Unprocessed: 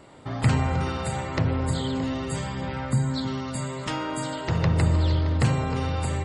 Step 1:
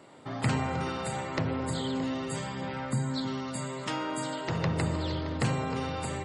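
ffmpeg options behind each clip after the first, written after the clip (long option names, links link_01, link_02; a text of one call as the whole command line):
ffmpeg -i in.wav -af "highpass=150,volume=-3dB" out.wav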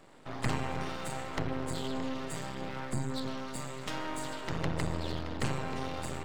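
ffmpeg -i in.wav -af "aeval=exprs='max(val(0),0)':channel_layout=same" out.wav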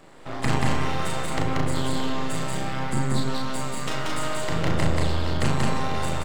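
ffmpeg -i in.wav -filter_complex "[0:a]asplit=2[link_01][link_02];[link_02]adelay=37,volume=-5dB[link_03];[link_01][link_03]amix=inputs=2:normalize=0,asplit=2[link_04][link_05];[link_05]aecho=0:1:183.7|215.7:0.794|0.355[link_06];[link_04][link_06]amix=inputs=2:normalize=0,volume=6dB" out.wav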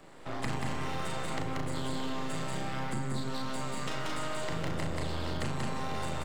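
ffmpeg -i in.wav -filter_complex "[0:a]acrossover=split=110|7300[link_01][link_02][link_03];[link_01]acompressor=threshold=-32dB:ratio=4[link_04];[link_02]acompressor=threshold=-30dB:ratio=4[link_05];[link_03]acompressor=threshold=-51dB:ratio=4[link_06];[link_04][link_05][link_06]amix=inputs=3:normalize=0,volume=-3.5dB" out.wav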